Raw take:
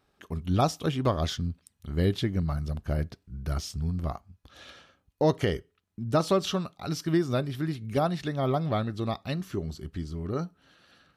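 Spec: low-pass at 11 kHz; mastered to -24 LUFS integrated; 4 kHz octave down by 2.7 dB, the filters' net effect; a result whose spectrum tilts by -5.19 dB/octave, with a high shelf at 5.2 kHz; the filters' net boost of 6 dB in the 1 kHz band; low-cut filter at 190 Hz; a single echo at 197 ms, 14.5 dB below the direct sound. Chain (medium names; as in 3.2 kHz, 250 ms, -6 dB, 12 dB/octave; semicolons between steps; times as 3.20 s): high-pass 190 Hz; low-pass 11 kHz; peaking EQ 1 kHz +8.5 dB; peaking EQ 4 kHz -6 dB; treble shelf 5.2 kHz +4.5 dB; delay 197 ms -14.5 dB; trim +5 dB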